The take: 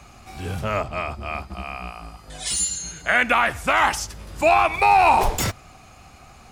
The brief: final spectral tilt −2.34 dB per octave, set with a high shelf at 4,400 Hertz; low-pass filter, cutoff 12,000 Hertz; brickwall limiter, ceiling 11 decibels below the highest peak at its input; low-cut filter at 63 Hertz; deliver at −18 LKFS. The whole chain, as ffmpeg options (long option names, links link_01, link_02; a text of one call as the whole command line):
ffmpeg -i in.wav -af "highpass=63,lowpass=12000,highshelf=frequency=4400:gain=4,volume=9dB,alimiter=limit=-8dB:level=0:latency=1" out.wav